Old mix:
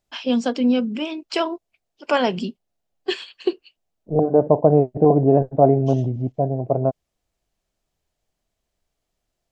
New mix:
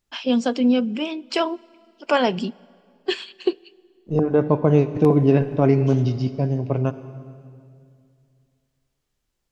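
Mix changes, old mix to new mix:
second voice: remove synth low-pass 700 Hz, resonance Q 4.4; reverb: on, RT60 2.3 s

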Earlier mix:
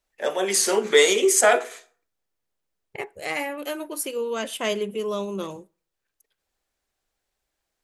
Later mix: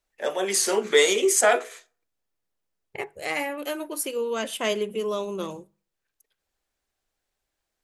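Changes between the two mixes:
first voice: send -10.0 dB; second voice: add notches 50/100/150/200 Hz

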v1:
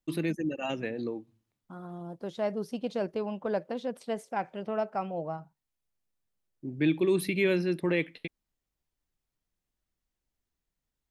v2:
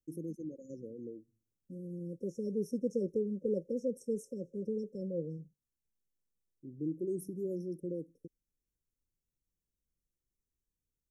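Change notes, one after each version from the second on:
first voice -10.5 dB; master: add brick-wall FIR band-stop 570–5300 Hz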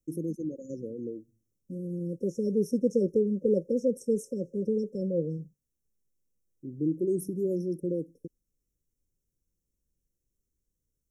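first voice +8.0 dB; second voice +8.0 dB

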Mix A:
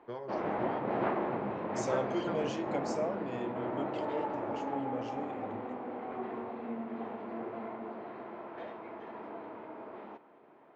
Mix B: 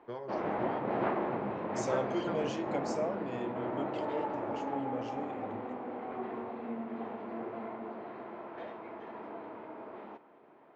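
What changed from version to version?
none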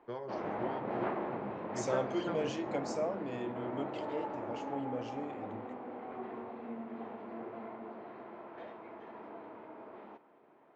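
background -4.0 dB

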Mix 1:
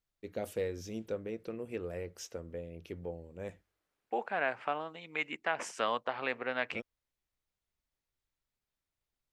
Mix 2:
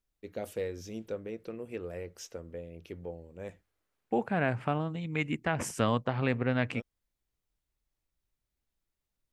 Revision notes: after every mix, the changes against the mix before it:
second voice: remove BPF 580–5700 Hz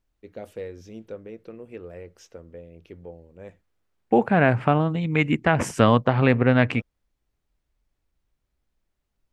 second voice +11.0 dB; master: add high shelf 5300 Hz -11 dB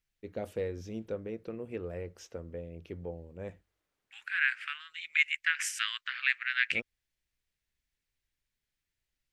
second voice: add steep high-pass 1600 Hz 48 dB/oct; master: add low shelf 140 Hz +4.5 dB

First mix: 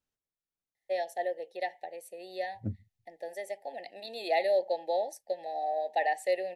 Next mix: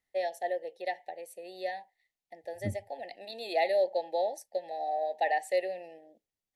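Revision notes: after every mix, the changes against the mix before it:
first voice: entry -0.75 s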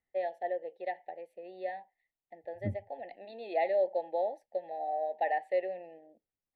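master: add air absorption 500 m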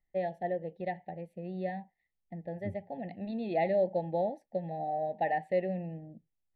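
first voice: remove HPF 410 Hz 24 dB/oct; second voice -5.5 dB

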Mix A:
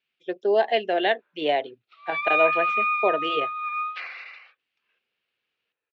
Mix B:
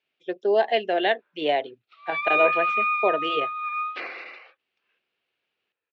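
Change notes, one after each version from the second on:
second voice: remove HPF 1200 Hz 12 dB/oct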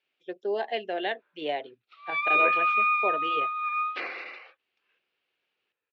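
first voice -7.0 dB; master: add notch 660 Hz, Q 22

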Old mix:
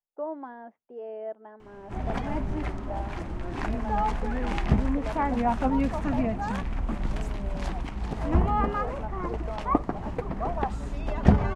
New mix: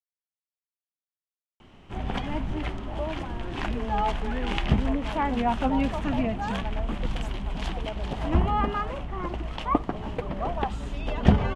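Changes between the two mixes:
speech: entry +2.80 s; background: add bell 3100 Hz +10.5 dB 0.62 oct

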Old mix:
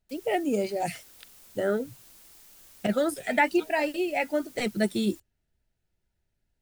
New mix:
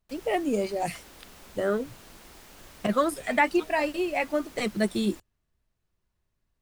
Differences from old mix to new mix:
speech: remove Butterworth band-stop 1100 Hz, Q 3.5; background: remove pre-emphasis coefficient 0.8

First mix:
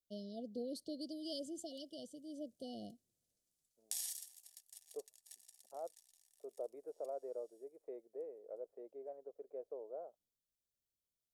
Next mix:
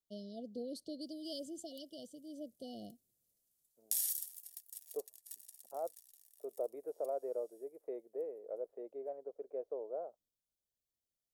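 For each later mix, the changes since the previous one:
second voice +5.5 dB; background: remove LPF 7800 Hz 12 dB/oct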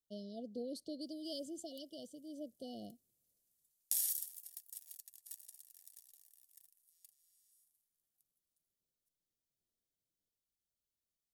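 second voice: muted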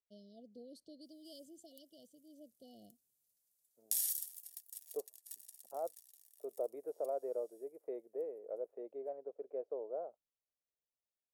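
first voice -10.5 dB; second voice: unmuted

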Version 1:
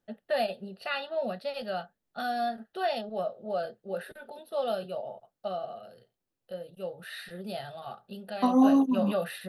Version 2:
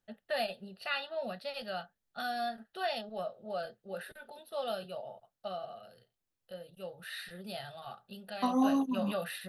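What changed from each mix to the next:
master: add bell 360 Hz -8 dB 2.7 oct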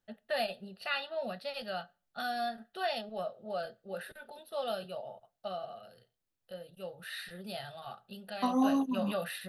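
reverb: on, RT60 0.40 s

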